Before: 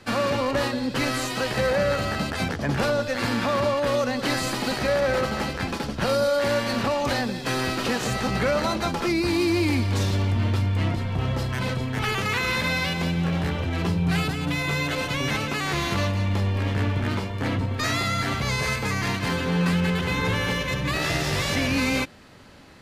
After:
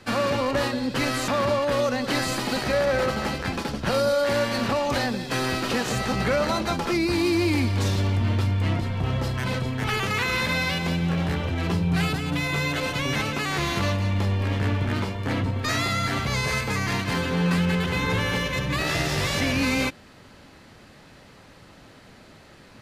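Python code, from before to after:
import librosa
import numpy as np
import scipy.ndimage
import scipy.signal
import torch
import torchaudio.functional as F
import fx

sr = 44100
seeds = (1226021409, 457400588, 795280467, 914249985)

y = fx.edit(x, sr, fx.cut(start_s=1.28, length_s=2.15), tone=tone)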